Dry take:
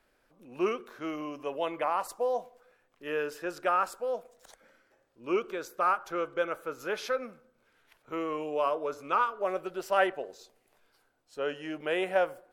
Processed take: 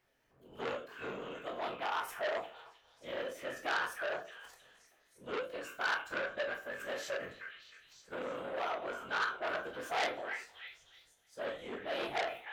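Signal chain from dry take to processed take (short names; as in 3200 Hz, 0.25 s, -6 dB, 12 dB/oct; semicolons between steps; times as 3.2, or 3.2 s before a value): whisperiser; delay with a stepping band-pass 0.311 s, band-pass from 1600 Hz, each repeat 0.7 oct, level -5 dB; reverb RT60 0.35 s, pre-delay 16 ms, DRR 2 dB; formant shift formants +3 st; core saturation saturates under 3300 Hz; gain -7 dB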